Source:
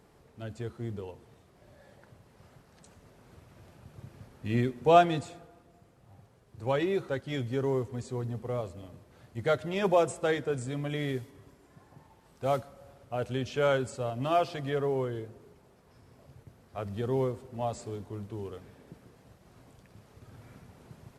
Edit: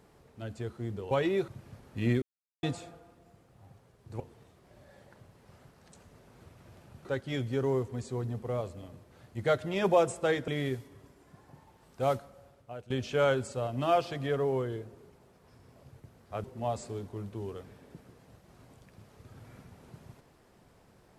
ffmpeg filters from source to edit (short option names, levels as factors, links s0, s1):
-filter_complex "[0:a]asplit=10[s0][s1][s2][s3][s4][s5][s6][s7][s8][s9];[s0]atrim=end=1.112[s10];[s1]atrim=start=6.678:end=7.052[s11];[s2]atrim=start=3.958:end=4.7,asetpts=PTS-STARTPTS,afade=t=out:st=0.738:d=0.004:c=hsin[s12];[s3]atrim=start=4.7:end=5.11,asetpts=PTS-STARTPTS,volume=0[s13];[s4]atrim=start=5.11:end=6.682,asetpts=PTS-STARTPTS,afade=t=in:d=0.004:c=hsin[s14];[s5]atrim=start=1.108:end=3.962[s15];[s6]atrim=start=7.048:end=10.482[s16];[s7]atrim=start=10.908:end=13.33,asetpts=PTS-STARTPTS,afade=t=out:st=1.672:d=0.75:silence=0.141254[s17];[s8]atrim=start=13.33:end=16.872,asetpts=PTS-STARTPTS,afade=t=in:d=0.004:c=hsin:silence=0.141254[s18];[s9]atrim=start=17.408[s19];[s10][s11]acrossfade=d=0.004:c1=hsin:c2=hsin[s20];[s12][s13][s14]concat=n=3:v=0:a=1[s21];[s20][s21]acrossfade=d=0.004:c1=hsin:c2=hsin[s22];[s22][s15]acrossfade=d=0.004:c1=hsin:c2=hsin[s23];[s23][s16]acrossfade=d=0.004:c1=hsin:c2=hsin[s24];[s17][s18]concat=n=2:v=0:a=1[s25];[s24][s25]acrossfade=d=0.004:c1=hsin:c2=hsin[s26];[s26][s19]acrossfade=d=0.004:c1=hsin:c2=hsin"